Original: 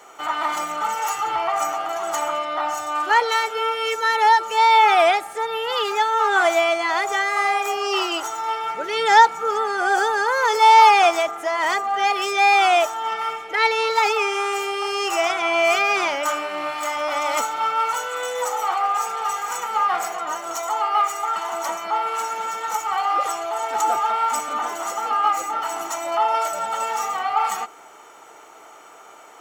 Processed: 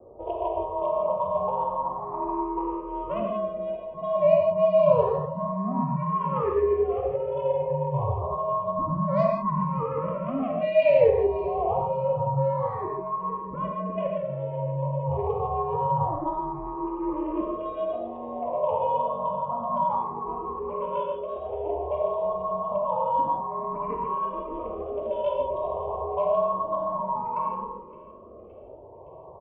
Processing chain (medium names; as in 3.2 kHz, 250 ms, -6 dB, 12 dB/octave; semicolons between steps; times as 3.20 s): steep low-pass 1.4 kHz 96 dB/octave; in parallel at -0.5 dB: compression 10:1, threshold -29 dBFS, peak gain reduction 20 dB; on the sum: saturation -7 dBFS, distortion -21 dB; frequency shift -260 Hz; on a send: feedback delay 567 ms, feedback 54%, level -20 dB; on the sum: gated-style reverb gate 190 ms flat, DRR -0.5 dB; barber-pole phaser +0.28 Hz; trim -6 dB